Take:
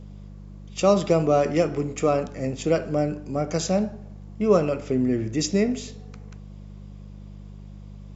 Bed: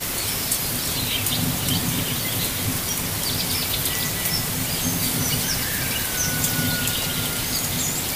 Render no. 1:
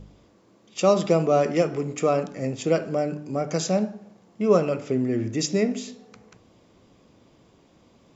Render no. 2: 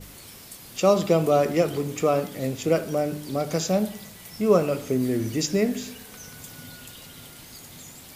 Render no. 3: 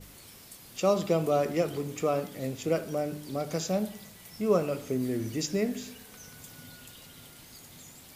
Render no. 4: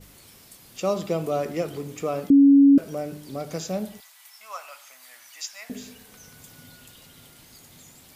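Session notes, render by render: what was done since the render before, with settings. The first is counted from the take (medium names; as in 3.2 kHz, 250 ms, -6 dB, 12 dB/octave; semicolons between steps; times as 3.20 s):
de-hum 50 Hz, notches 6
add bed -20 dB
trim -6 dB
2.30–2.78 s: bleep 279 Hz -10 dBFS; 4.00–5.70 s: inverse Chebyshev high-pass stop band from 420 Hz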